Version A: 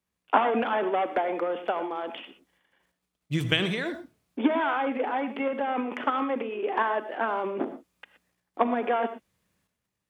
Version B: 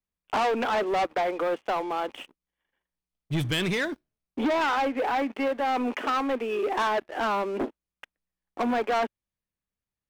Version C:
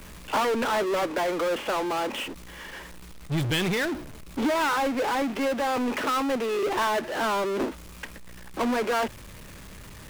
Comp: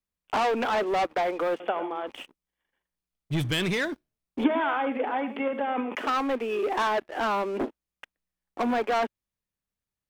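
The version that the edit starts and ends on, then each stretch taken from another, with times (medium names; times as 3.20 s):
B
1.60–2.07 s: from A
4.44–5.95 s: from A
not used: C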